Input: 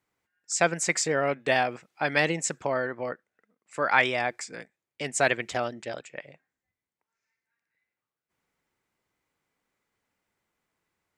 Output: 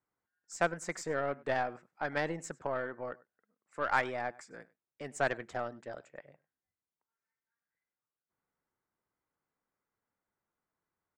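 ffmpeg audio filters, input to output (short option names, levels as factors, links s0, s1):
-filter_complex "[0:a]highshelf=f=1900:t=q:w=1.5:g=-8,asplit=2[s0][s1];[s1]adelay=99.13,volume=0.0794,highshelf=f=4000:g=-2.23[s2];[s0][s2]amix=inputs=2:normalize=0,aeval=exprs='0.447*(cos(1*acos(clip(val(0)/0.447,-1,1)))-cos(1*PI/2))+0.0355*(cos(3*acos(clip(val(0)/0.447,-1,1)))-cos(3*PI/2))+0.0141*(cos(8*acos(clip(val(0)/0.447,-1,1)))-cos(8*PI/2))':c=same,volume=0.501"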